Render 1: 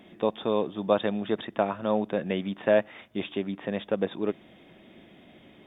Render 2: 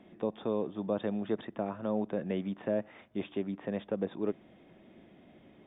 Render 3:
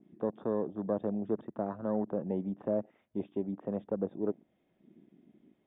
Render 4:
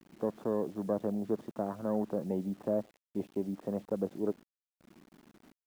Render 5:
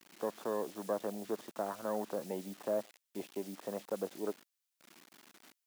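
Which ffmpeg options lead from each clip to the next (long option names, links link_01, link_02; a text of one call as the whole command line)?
ffmpeg -i in.wav -filter_complex "[0:a]lowpass=frequency=1400:poles=1,acrossover=split=430[link_01][link_02];[link_02]alimiter=level_in=2dB:limit=-24dB:level=0:latency=1:release=48,volume=-2dB[link_03];[link_01][link_03]amix=inputs=2:normalize=0,volume=-3.5dB" out.wav
ffmpeg -i in.wav -af "afwtdn=0.00794,adynamicequalizer=threshold=0.002:dfrequency=2000:dqfactor=0.7:tfrequency=2000:tqfactor=0.7:attack=5:release=100:ratio=0.375:range=2.5:mode=cutabove:tftype=highshelf" out.wav
ffmpeg -i in.wav -af "acrusher=bits=9:mix=0:aa=0.000001" out.wav
ffmpeg -i in.wav -af "highpass=frequency=980:poles=1,highshelf=frequency=2000:gain=7.5,volume=3.5dB" out.wav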